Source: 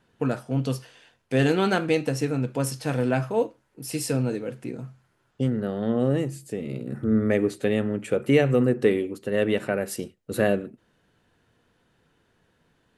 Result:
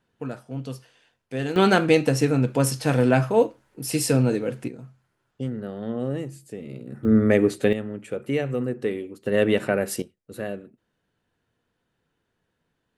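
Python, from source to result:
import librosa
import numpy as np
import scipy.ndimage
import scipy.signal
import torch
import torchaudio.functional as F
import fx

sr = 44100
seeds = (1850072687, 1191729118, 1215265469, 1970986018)

y = fx.gain(x, sr, db=fx.steps((0.0, -7.0), (1.56, 5.0), (4.68, -5.0), (7.05, 4.0), (7.73, -6.0), (9.26, 3.0), (10.02, -9.5)))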